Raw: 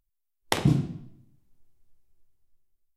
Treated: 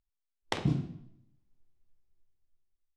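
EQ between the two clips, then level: low-pass 5.7 kHz 12 dB/octave; -7.0 dB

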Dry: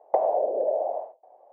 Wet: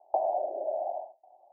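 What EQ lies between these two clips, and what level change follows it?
four-pole ladder low-pass 930 Hz, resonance 45%; static phaser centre 320 Hz, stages 8; 0.0 dB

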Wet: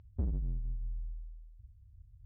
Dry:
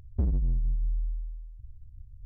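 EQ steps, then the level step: high-pass 44 Hz; distance through air 170 m; -6.0 dB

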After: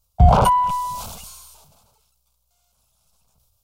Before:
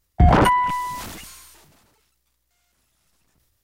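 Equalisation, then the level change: static phaser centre 770 Hz, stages 4; +3.0 dB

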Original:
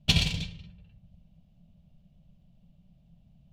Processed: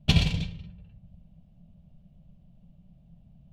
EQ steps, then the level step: treble shelf 2.4 kHz -11 dB; +4.5 dB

